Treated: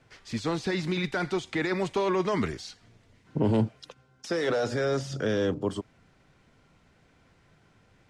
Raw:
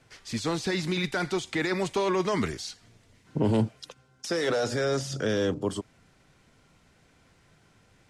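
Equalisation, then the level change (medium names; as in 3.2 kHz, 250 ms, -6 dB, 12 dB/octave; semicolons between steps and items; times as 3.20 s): low-pass 3.5 kHz 6 dB/octave; 0.0 dB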